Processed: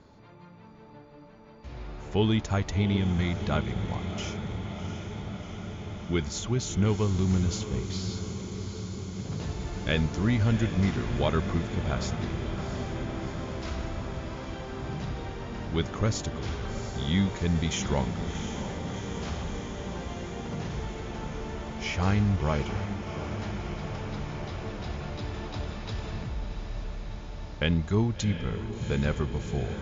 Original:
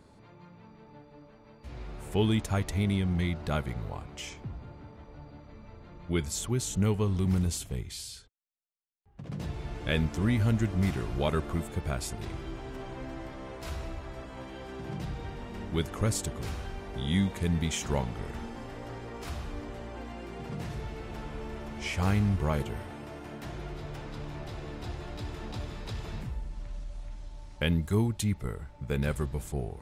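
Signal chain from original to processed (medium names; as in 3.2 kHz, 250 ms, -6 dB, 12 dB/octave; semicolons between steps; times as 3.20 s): Chebyshev low-pass 7.1 kHz, order 10; echo that smears into a reverb 718 ms, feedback 77%, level -9.5 dB; trim +2.5 dB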